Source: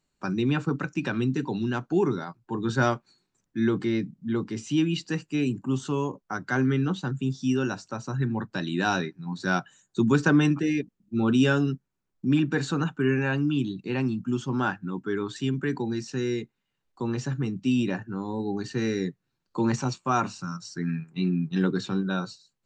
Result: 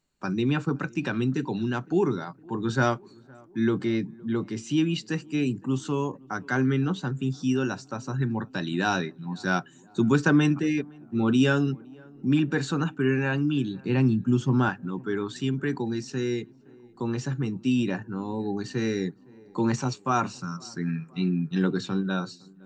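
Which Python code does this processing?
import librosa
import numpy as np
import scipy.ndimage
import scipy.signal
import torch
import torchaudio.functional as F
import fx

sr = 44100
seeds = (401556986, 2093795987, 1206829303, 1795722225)

y = fx.low_shelf(x, sr, hz=220.0, db=10.0, at=(13.81, 14.69))
y = fx.echo_tape(y, sr, ms=513, feedback_pct=72, wet_db=-23, lp_hz=1200.0, drive_db=15.0, wow_cents=13)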